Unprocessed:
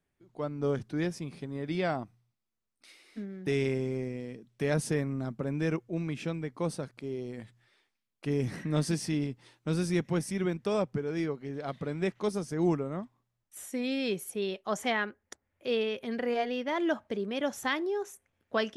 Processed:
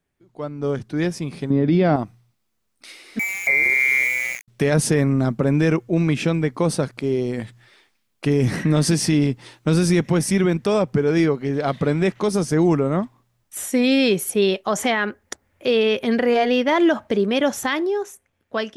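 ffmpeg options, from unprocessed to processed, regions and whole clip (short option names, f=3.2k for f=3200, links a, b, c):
-filter_complex "[0:a]asettb=1/sr,asplit=3[a][b][c];[a]atrim=end=1.504[d];[b]atrim=start=1.5:end=1.96,asetpts=PTS-STARTPTS,afade=t=in:d=0.004:c=qsin,afade=t=out:st=0.456:d=0.004:c=qsin,lowpass=f=5.5k:w=0.5412,lowpass=f=5.5k:w=1.3066,equalizer=f=230:t=o:w=2.8:g=12[e];[c]atrim=start=1.956[f];[d][e]acrossfade=d=0.004:c1=hsin:c2=qsin[g];[g][f]acrossfade=d=0.004:c1=qsin:c2=hsin,asettb=1/sr,asplit=3[h][i][j];[h]atrim=end=3.194[k];[i]atrim=start=3.19:end=4.48,asetpts=PTS-STARTPTS,afade=t=in:d=0.004:c=qsin,afade=t=out:st=1.286:d=0.004:c=qsin,lowpass=f=2.1k:t=q:w=0.5098,lowpass=f=2.1k:t=q:w=0.6013,lowpass=f=2.1k:t=q:w=0.9,lowpass=f=2.1k:t=q:w=2.563,afreqshift=-2500,aeval=exprs='val(0)*gte(abs(val(0)),0.00794)':c=same[l];[j]atrim=start=4.476[m];[k][l]acrossfade=d=0.004:c1=hsin:c2=qsin[n];[n][m]acrossfade=d=0.004:c1=qsin:c2=hsin,dynaudnorm=f=110:g=21:m=10.5dB,alimiter=level_in=13dB:limit=-1dB:release=50:level=0:latency=1,volume=-8.5dB"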